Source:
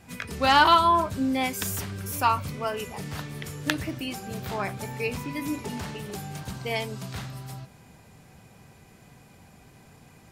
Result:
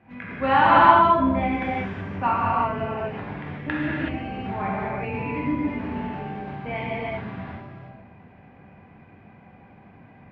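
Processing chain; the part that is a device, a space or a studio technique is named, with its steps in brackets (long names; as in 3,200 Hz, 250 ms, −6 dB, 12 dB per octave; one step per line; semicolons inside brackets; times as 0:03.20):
0:05.79–0:06.64: high-pass filter 140 Hz 12 dB per octave
sub-octave bass pedal (sub-octave generator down 2 octaves, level −1 dB; loudspeaker in its box 78–2,200 Hz, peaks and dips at 130 Hz −8 dB, 440 Hz −5 dB, 1,300 Hz −5 dB)
reverb whose tail is shaped and stops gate 400 ms flat, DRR −7 dB
level −2 dB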